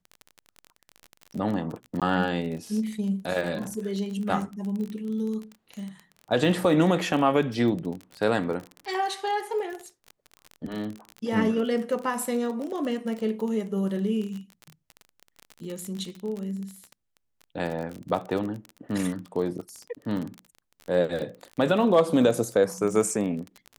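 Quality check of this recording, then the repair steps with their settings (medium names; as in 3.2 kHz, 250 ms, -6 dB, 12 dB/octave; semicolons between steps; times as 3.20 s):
crackle 30 per s -31 dBFS
2.00–2.02 s: dropout 17 ms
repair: de-click; interpolate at 2.00 s, 17 ms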